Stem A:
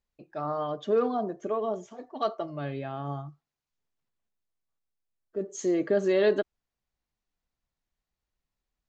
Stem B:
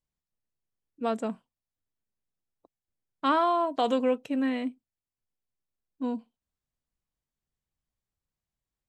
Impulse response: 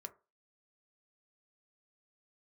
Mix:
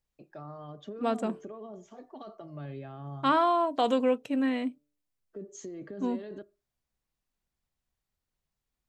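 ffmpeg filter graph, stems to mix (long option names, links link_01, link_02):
-filter_complex "[0:a]alimiter=level_in=0.5dB:limit=-24dB:level=0:latency=1:release=13,volume=-0.5dB,acrossover=split=230[link_01][link_02];[link_02]acompressor=threshold=-41dB:ratio=6[link_03];[link_01][link_03]amix=inputs=2:normalize=0,volume=-5.5dB,asplit=2[link_04][link_05];[link_05]volume=-3dB[link_06];[1:a]bandreject=frequency=147:width_type=h:width=4,bandreject=frequency=294:width_type=h:width=4,bandreject=frequency=441:width_type=h:width=4,bandreject=frequency=588:width_type=h:width=4,volume=0dB[link_07];[2:a]atrim=start_sample=2205[link_08];[link_06][link_08]afir=irnorm=-1:irlink=0[link_09];[link_04][link_07][link_09]amix=inputs=3:normalize=0"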